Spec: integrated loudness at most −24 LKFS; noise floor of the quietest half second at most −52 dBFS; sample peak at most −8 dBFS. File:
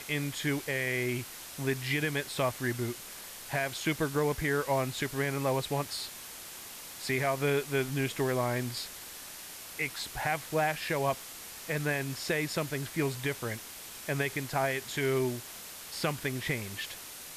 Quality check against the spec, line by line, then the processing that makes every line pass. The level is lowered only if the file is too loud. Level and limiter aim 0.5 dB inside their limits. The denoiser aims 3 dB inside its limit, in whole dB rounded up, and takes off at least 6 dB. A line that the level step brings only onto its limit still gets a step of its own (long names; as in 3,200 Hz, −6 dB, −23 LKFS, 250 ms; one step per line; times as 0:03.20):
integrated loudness −32.5 LKFS: in spec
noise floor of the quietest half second −45 dBFS: out of spec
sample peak −17.0 dBFS: in spec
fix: broadband denoise 10 dB, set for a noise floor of −45 dBFS